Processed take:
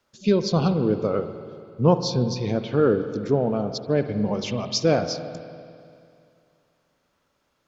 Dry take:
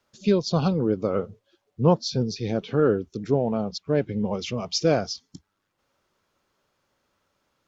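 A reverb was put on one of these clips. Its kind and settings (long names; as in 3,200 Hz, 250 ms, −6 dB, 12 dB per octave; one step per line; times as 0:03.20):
spring reverb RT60 2.5 s, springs 48/56 ms, chirp 30 ms, DRR 9 dB
level +1 dB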